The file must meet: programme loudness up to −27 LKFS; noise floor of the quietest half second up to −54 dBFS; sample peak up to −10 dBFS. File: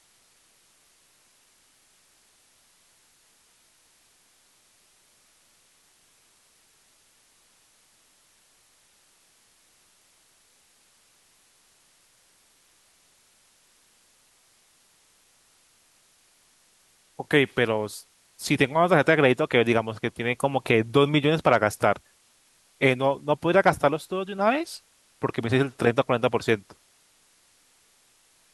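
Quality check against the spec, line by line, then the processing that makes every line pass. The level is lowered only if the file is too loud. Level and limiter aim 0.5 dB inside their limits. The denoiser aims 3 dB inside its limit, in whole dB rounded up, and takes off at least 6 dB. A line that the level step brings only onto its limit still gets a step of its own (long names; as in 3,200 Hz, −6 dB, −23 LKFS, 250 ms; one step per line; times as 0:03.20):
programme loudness −23.5 LKFS: out of spec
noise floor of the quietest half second −62 dBFS: in spec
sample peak −5.5 dBFS: out of spec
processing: level −4 dB
brickwall limiter −10.5 dBFS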